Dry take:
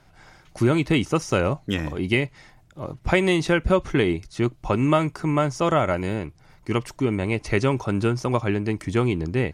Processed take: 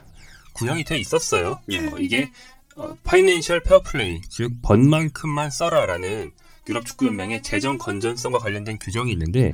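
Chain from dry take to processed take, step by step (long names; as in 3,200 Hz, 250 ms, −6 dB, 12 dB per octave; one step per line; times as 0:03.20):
phase shifter 0.21 Hz, delay 4.1 ms, feedback 76%
high-shelf EQ 4,900 Hz +12 dB
mains-hum notches 60/120/180/240 Hz
level −2.5 dB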